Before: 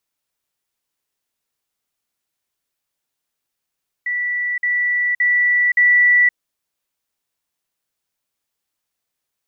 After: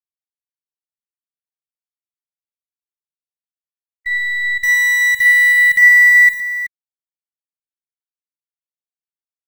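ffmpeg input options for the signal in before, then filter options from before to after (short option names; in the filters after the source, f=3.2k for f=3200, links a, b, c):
-f lavfi -i "aevalsrc='pow(10,(-18.5+3*floor(t/0.57))/20)*sin(2*PI*1960*t)*clip(min(mod(t,0.57),0.52-mod(t,0.57))/0.005,0,1)':d=2.28:s=44100"
-filter_complex "[0:a]afftfilt=real='re*gte(hypot(re,im),0.2)':imag='im*gte(hypot(re,im),0.2)':win_size=1024:overlap=0.75,asplit=2[a][b];[b]acrusher=bits=4:dc=4:mix=0:aa=0.000001,volume=-6.5dB[c];[a][c]amix=inputs=2:normalize=0,aecho=1:1:48|112|376:0.335|0.335|0.251"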